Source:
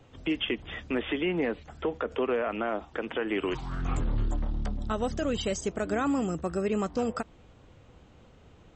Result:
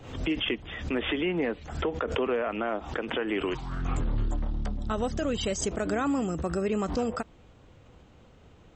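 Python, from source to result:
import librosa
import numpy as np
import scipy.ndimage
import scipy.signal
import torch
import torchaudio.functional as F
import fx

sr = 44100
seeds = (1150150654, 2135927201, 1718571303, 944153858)

y = fx.pre_swell(x, sr, db_per_s=81.0)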